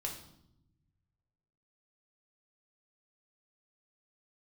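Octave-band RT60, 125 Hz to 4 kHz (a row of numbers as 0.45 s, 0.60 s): 2.1 s, 1.5 s, 0.85 s, 0.70 s, 0.60 s, 0.65 s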